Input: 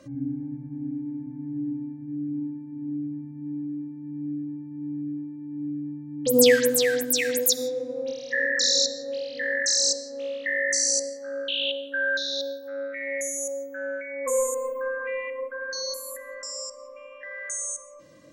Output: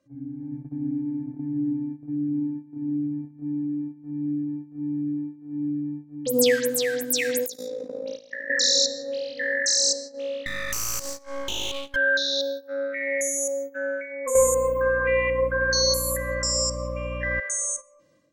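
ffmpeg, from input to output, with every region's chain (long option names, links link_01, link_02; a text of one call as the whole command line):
ffmpeg -i in.wav -filter_complex "[0:a]asettb=1/sr,asplit=3[link_01][link_02][link_03];[link_01]atrim=end=7.464[link_04];[link_02]atrim=start=7.46:end=8.5,asetpts=PTS-STARTPTS,afade=type=in:duration=0.004:curve=qsin,afade=type=out:start_time=1.036:duration=0.004:curve=qsin,acompressor=threshold=-28dB:ratio=16:attack=3.2:release=140:knee=1:detection=peak,tremolo=f=55:d=0.71[link_05];[link_03]atrim=start=8.496[link_06];[link_04][link_05]acrossfade=duration=0.004:curve1=hsin:curve2=qsin[link_07];[link_07][link_06]acrossfade=duration=0.004:curve1=qsin:curve2=hsin,asettb=1/sr,asplit=3[link_08][link_09][link_10];[link_08]atrim=end=10.464[link_11];[link_09]atrim=start=10.46:end=11.96,asetpts=PTS-STARTPTS,afade=type=in:duration=0.004:curve=qsin,afade=type=out:start_time=1.496:duration=0.004:curve=qsin,bass=frequency=250:gain=4,treble=frequency=4000:gain=12,acompressor=threshold=-25dB:ratio=6:attack=3.2:release=140:knee=1:detection=peak,aeval=exprs='max(val(0),0)':channel_layout=same[link_12];[link_10]atrim=start=11.956[link_13];[link_11][link_12]acrossfade=duration=0.004:curve1=hsin:curve2=qsin[link_14];[link_14][link_13]acrossfade=duration=0.004:curve1=qsin:curve2=hsin,asettb=1/sr,asplit=3[link_15][link_16][link_17];[link_15]atrim=end=14.354[link_18];[link_16]atrim=start=14.35:end=17.4,asetpts=PTS-STARTPTS,afade=type=in:duration=0.004:curve=qsin,afade=type=out:start_time=3.046:duration=0.004:curve=qsin,acontrast=86,aeval=exprs='val(0)+0.0178*(sin(2*PI*60*n/s)+sin(2*PI*2*60*n/s)/2+sin(2*PI*3*60*n/s)/3+sin(2*PI*4*60*n/s)/4+sin(2*PI*5*60*n/s)/5)':channel_layout=same[link_19];[link_17]atrim=start=17.396[link_20];[link_18][link_19]acrossfade=duration=0.004:curve1=hsin:curve2=qsin[link_21];[link_21][link_20]acrossfade=duration=0.004:curve1=qsin:curve2=hsin,agate=range=-13dB:threshold=-36dB:ratio=16:detection=peak,dynaudnorm=framelen=330:gausssize=3:maxgain=11.5dB,volume=-7.5dB" out.wav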